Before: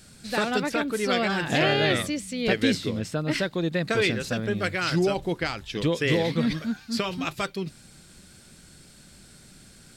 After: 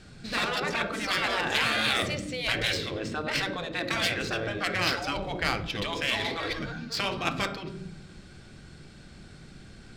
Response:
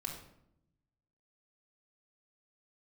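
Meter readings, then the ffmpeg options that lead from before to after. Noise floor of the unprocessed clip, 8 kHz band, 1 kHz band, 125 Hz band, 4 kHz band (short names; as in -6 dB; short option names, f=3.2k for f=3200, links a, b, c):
-52 dBFS, -1.5 dB, -0.5 dB, -7.0 dB, +1.5 dB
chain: -filter_complex "[0:a]asplit=2[a][b];[1:a]atrim=start_sample=2205[c];[b][c]afir=irnorm=-1:irlink=0,volume=-2.5dB[d];[a][d]amix=inputs=2:normalize=0,adynamicsmooth=sensitivity=2.5:basefreq=4k,afftfilt=real='re*lt(hypot(re,im),0.251)':imag='im*lt(hypot(re,im),0.251)':win_size=1024:overlap=0.75"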